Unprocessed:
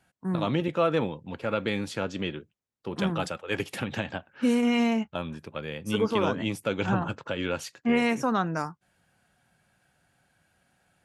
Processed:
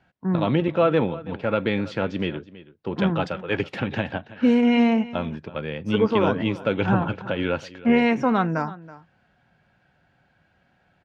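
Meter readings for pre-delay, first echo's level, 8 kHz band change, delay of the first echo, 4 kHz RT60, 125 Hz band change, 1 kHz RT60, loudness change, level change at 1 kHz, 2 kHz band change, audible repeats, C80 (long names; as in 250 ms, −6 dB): no reverb audible, −18.0 dB, below −10 dB, 326 ms, no reverb audible, +6.0 dB, no reverb audible, +5.5 dB, +4.5 dB, +4.0 dB, 1, no reverb audible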